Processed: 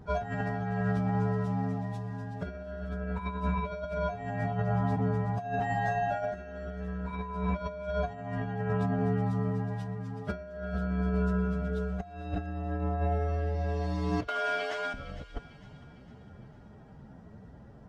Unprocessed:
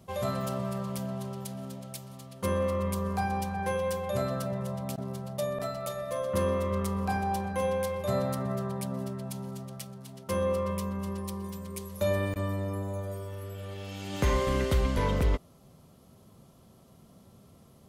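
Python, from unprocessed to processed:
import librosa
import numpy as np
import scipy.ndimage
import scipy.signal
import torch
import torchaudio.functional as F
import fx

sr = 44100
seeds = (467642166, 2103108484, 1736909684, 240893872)

y = fx.partial_stretch(x, sr, pct=121)
y = fx.notch(y, sr, hz=1300.0, q=19.0, at=(1.76, 2.54))
y = fx.highpass(y, sr, hz=980.0, slope=12, at=(14.27, 14.94))
y = fx.over_compress(y, sr, threshold_db=-36.0, ratio=-0.5)
y = fx.spacing_loss(y, sr, db_at_10k=26)
y = fx.echo_wet_highpass(y, sr, ms=455, feedback_pct=48, hz=1700.0, wet_db=-14)
y = y * librosa.db_to_amplitude(6.5)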